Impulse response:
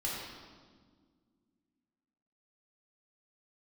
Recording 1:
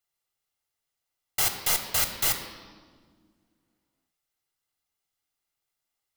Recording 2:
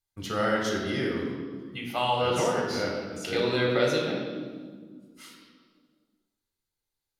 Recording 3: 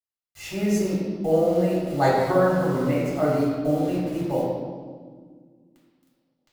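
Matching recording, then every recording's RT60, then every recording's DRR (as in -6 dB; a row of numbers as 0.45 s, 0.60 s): 3; 1.7 s, 1.7 s, 1.7 s; 5.5 dB, -1.5 dB, -6.0 dB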